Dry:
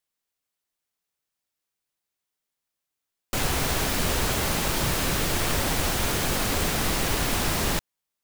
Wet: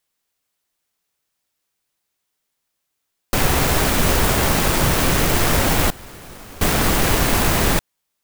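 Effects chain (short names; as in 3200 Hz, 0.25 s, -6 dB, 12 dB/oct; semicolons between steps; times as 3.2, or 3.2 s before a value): tracing distortion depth 0.28 ms; 5.9–6.67 gate with hold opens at -14 dBFS; gain +8.5 dB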